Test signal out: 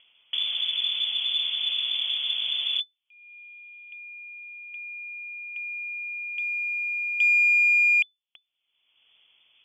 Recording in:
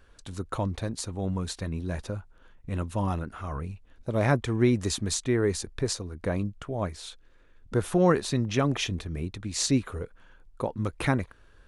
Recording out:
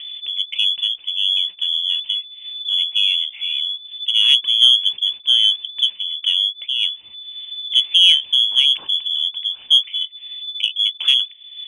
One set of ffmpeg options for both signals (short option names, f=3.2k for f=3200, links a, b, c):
-af "acompressor=mode=upward:threshold=-31dB:ratio=2.5,lowpass=f=3k:t=q:w=0.5098,lowpass=f=3k:t=q:w=0.6013,lowpass=f=3k:t=q:w=0.9,lowpass=f=3k:t=q:w=2.563,afreqshift=-3500,aexciter=amount=12.7:drive=6.2:freq=2.7k,volume=-9.5dB"